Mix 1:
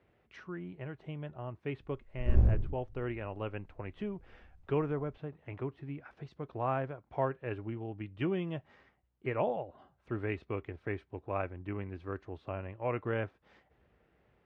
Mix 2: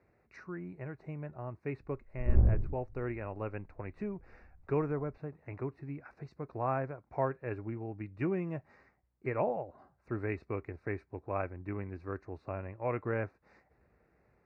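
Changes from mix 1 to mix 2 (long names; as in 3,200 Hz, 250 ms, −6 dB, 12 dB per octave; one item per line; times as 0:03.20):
background: add low-pass filter 1,400 Hz 12 dB per octave
master: add Butterworth band-reject 3,200 Hz, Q 2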